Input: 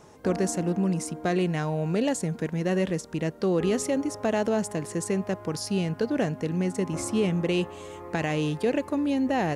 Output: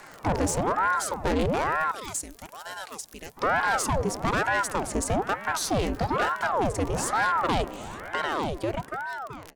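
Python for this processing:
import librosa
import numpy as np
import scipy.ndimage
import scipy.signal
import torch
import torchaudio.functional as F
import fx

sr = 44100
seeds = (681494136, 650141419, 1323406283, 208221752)

y = fx.fade_out_tail(x, sr, length_s=2.07)
y = fx.dmg_crackle(y, sr, seeds[0], per_s=42.0, level_db=-34.0)
y = fx.pre_emphasis(y, sr, coefficient=0.9, at=(1.91, 3.37))
y = fx.doubler(y, sr, ms=15.0, db=-6.5, at=(5.5, 6.5))
y = fx.tube_stage(y, sr, drive_db=26.0, bias=0.2)
y = fx.ring_lfo(y, sr, carrier_hz=680.0, swing_pct=85, hz=1.1)
y = F.gain(torch.from_numpy(y), 8.0).numpy()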